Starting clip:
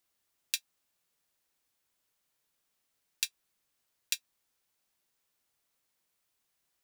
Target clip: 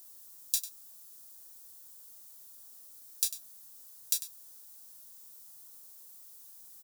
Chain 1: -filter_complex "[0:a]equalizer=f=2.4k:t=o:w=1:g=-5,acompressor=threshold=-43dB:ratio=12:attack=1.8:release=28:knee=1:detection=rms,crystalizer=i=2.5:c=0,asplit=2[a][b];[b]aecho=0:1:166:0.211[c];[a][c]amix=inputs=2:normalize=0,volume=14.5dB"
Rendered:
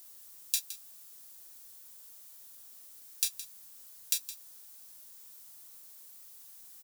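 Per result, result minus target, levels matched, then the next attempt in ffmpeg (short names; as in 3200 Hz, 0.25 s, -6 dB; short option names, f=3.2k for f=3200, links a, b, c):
echo 68 ms late; 2000 Hz band +13.5 dB
-filter_complex "[0:a]equalizer=f=2.4k:t=o:w=1:g=-5,acompressor=threshold=-43dB:ratio=12:attack=1.8:release=28:knee=1:detection=rms,crystalizer=i=2.5:c=0,asplit=2[a][b];[b]aecho=0:1:98:0.211[c];[a][c]amix=inputs=2:normalize=0,volume=14.5dB"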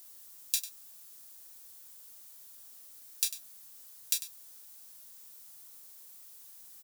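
2000 Hz band +13.5 dB
-filter_complex "[0:a]equalizer=f=2.4k:t=o:w=1:g=-14.5,acompressor=threshold=-43dB:ratio=12:attack=1.8:release=28:knee=1:detection=rms,crystalizer=i=2.5:c=0,asplit=2[a][b];[b]aecho=0:1:98:0.211[c];[a][c]amix=inputs=2:normalize=0,volume=14.5dB"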